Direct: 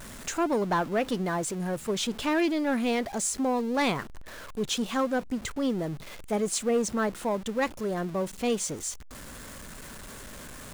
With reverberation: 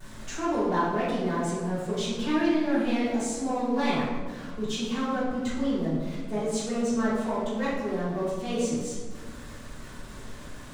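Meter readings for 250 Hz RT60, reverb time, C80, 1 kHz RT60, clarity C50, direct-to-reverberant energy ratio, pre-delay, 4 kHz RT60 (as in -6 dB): 2.2 s, 1.6 s, 2.5 dB, 1.4 s, -1.0 dB, -13.0 dB, 3 ms, 0.85 s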